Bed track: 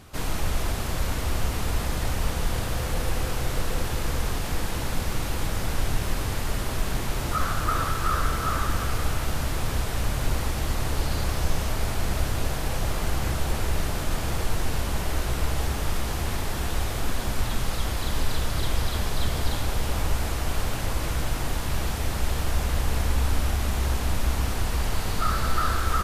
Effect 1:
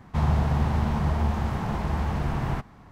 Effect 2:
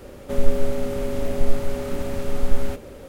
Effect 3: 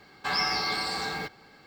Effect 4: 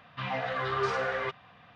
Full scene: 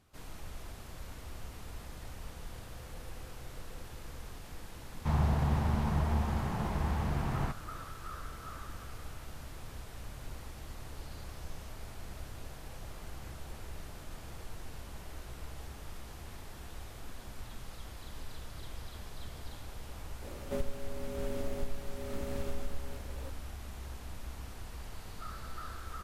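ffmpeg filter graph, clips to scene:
ffmpeg -i bed.wav -i cue0.wav -i cue1.wav -filter_complex "[0:a]volume=-19dB[link_01];[2:a]acompressor=threshold=-23dB:ratio=6:attack=30:release=793:knee=1:detection=peak[link_02];[1:a]atrim=end=2.91,asetpts=PTS-STARTPTS,volume=-6dB,afade=type=in:duration=0.004:curve=hsin,afade=type=out:start_time=2.906:duration=0.004:curve=hsin,adelay=4910[link_03];[link_02]atrim=end=3.08,asetpts=PTS-STARTPTS,volume=-7dB,afade=type=in:duration=0.004:curve=hsin,afade=type=out:start_time=3.076:duration=0.004:curve=hsin,adelay=20220[link_04];[link_01][link_03][link_04]amix=inputs=3:normalize=0" out.wav

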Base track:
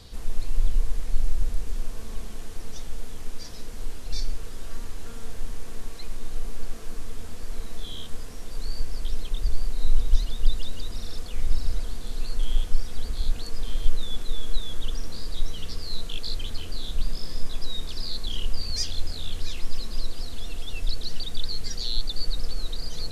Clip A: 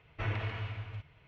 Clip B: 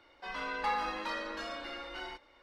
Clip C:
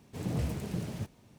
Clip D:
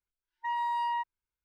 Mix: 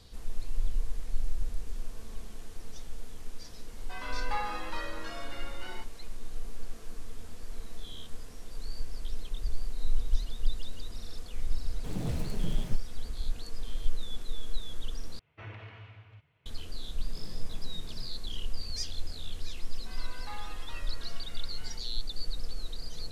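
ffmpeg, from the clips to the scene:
ffmpeg -i bed.wav -i cue0.wav -i cue1.wav -i cue2.wav -filter_complex "[2:a]asplit=2[link_01][link_02];[3:a]asplit=2[link_03][link_04];[0:a]volume=-7.5dB[link_05];[1:a]highpass=82[link_06];[link_04]acompressor=threshold=-46dB:ratio=6:attack=3.2:release=140:knee=1:detection=peak[link_07];[link_02]equalizer=frequency=170:width=0.51:gain=-14[link_08];[link_05]asplit=2[link_09][link_10];[link_09]atrim=end=15.194[link_11];[link_06]atrim=end=1.27,asetpts=PTS-STARTPTS,volume=-9.5dB[link_12];[link_10]atrim=start=16.456[link_13];[link_01]atrim=end=2.42,asetpts=PTS-STARTPTS,volume=-2dB,afade=type=in:duration=0.004:curve=hsin,afade=type=out:start_time=2.416:duration=0.004:curve=hsin,adelay=3670[link_14];[link_03]atrim=end=1.38,asetpts=PTS-STARTPTS,volume=-2dB,afade=type=in:duration=0.004:curve=hsin,afade=type=out:start_time=1.376:duration=0.004:curve=hsin,adelay=515970S[link_15];[link_07]atrim=end=1.38,asetpts=PTS-STARTPTS,volume=-2dB,afade=type=in:duration=0.004:curve=hsin,afade=type=out:start_time=1.376:duration=0.004:curve=hsin,adelay=17020[link_16];[link_08]atrim=end=2.42,asetpts=PTS-STARTPTS,volume=-10dB,afade=type=in:duration=0.004:curve=hsin,afade=type=out:start_time=2.416:duration=0.004:curve=hsin,adelay=19630[link_17];[link_11][link_12]acrossfade=duration=0.004:curve1=hsin:curve2=hsin[link_18];[link_18][link_13]acrossfade=duration=0.004:curve1=hsin:curve2=hsin[link_19];[link_19][link_14][link_15][link_16][link_17]amix=inputs=5:normalize=0" out.wav

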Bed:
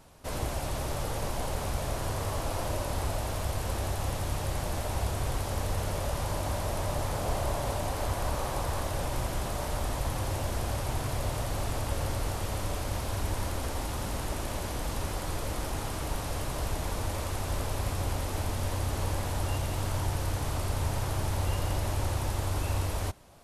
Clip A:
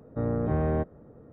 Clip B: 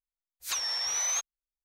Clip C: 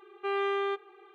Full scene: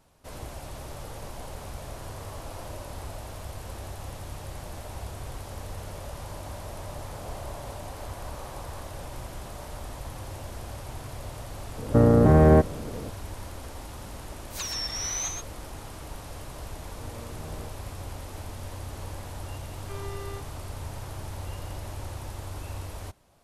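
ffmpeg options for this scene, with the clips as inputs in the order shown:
ffmpeg -i bed.wav -i cue0.wav -i cue1.wav -i cue2.wav -filter_complex "[1:a]asplit=2[link_01][link_02];[0:a]volume=-7dB[link_03];[link_01]alimiter=level_in=21.5dB:limit=-1dB:release=50:level=0:latency=1[link_04];[2:a]aecho=1:1:55.39|125.4:0.282|0.562[link_05];[3:a]aeval=exprs='(tanh(56.2*val(0)+0.75)-tanh(0.75))/56.2':channel_layout=same[link_06];[link_04]atrim=end=1.32,asetpts=PTS-STARTPTS,volume=-8dB,afade=type=in:duration=0.004:curve=hsin,afade=type=out:start_time=1.316:duration=0.004:curve=hsin,adelay=519498S[link_07];[link_05]atrim=end=1.64,asetpts=PTS-STARTPTS,volume=-3dB,afade=type=in:duration=0.004:curve=hsin,afade=type=out:start_time=1.636:duration=0.004:curve=hsin,adelay=14080[link_08];[link_02]atrim=end=1.32,asetpts=PTS-STARTPTS,volume=-17.5dB,afade=type=in:duration=0.004:curve=hsin,afade=type=out:start_time=1.316:duration=0.004:curve=hsin,adelay=16850[link_09];[link_06]atrim=end=1.14,asetpts=PTS-STARTPTS,volume=-3.5dB,afade=type=in:duration=0.004:curve=hsin,afade=type=out:start_time=1.136:duration=0.004:curve=hsin,adelay=19650[link_10];[link_03][link_07][link_08][link_09][link_10]amix=inputs=5:normalize=0" out.wav

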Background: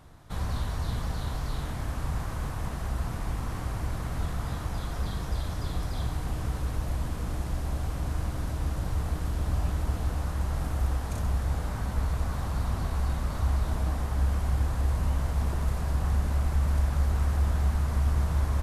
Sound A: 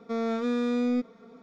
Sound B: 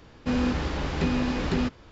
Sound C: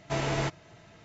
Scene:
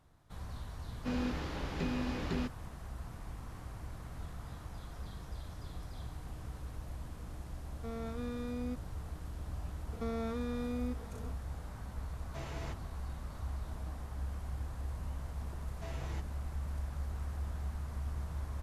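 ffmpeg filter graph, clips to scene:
ffmpeg -i bed.wav -i cue0.wav -i cue1.wav -i cue2.wav -filter_complex "[1:a]asplit=2[link_01][link_02];[3:a]asplit=2[link_03][link_04];[0:a]volume=-13.5dB[link_05];[link_02]acompressor=threshold=-36dB:ratio=6:attack=3.2:release=140:knee=1:detection=peak[link_06];[link_04]asplit=2[link_07][link_08];[link_08]adelay=6.5,afreqshift=-2.2[link_09];[link_07][link_09]amix=inputs=2:normalize=1[link_10];[2:a]atrim=end=1.91,asetpts=PTS-STARTPTS,volume=-10dB,afade=type=in:duration=0.004:curve=hsin,afade=type=out:start_time=1.906:duration=0.004:curve=hsin,adelay=790[link_11];[link_01]atrim=end=1.42,asetpts=PTS-STARTPTS,volume=-13.5dB,afade=type=in:duration=0.004:curve=hsin,afade=type=out:start_time=1.416:duration=0.004:curve=hsin,adelay=7740[link_12];[link_06]atrim=end=1.42,asetpts=PTS-STARTPTS,afade=type=in:duration=0.004:curve=hsin,afade=type=out:start_time=1.416:duration=0.004:curve=hsin,adelay=9920[link_13];[link_03]atrim=end=1.04,asetpts=PTS-STARTPTS,volume=-16dB,afade=type=in:duration=0.004:curve=hsin,afade=type=out:start_time=1.036:duration=0.004:curve=hsin,adelay=12240[link_14];[link_10]atrim=end=1.04,asetpts=PTS-STARTPTS,volume=-15dB,afade=type=in:duration=0.004:curve=hsin,afade=type=out:start_time=1.036:duration=0.004:curve=hsin,adelay=15710[link_15];[link_05][link_11][link_12][link_13][link_14][link_15]amix=inputs=6:normalize=0" out.wav

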